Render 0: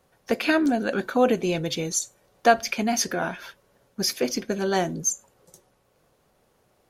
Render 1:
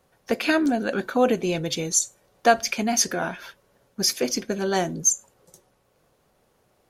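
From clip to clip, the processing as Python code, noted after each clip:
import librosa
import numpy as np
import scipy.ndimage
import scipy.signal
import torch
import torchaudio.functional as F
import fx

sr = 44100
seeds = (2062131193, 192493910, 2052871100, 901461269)

y = fx.dynamic_eq(x, sr, hz=7700.0, q=1.0, threshold_db=-40.0, ratio=4.0, max_db=6)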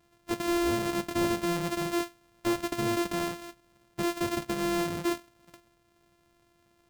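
y = np.r_[np.sort(x[:len(x) // 128 * 128].reshape(-1, 128), axis=1).ravel(), x[len(x) // 128 * 128:]]
y = 10.0 ** (-22.0 / 20.0) * np.tanh(y / 10.0 ** (-22.0 / 20.0))
y = y * librosa.db_to_amplitude(-1.5)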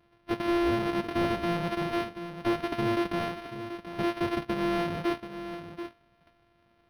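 y = x + 10.0 ** (-10.5 / 20.0) * np.pad(x, (int(733 * sr / 1000.0), 0))[:len(x)]
y = np.interp(np.arange(len(y)), np.arange(len(y))[::6], y[::6])
y = y * librosa.db_to_amplitude(1.5)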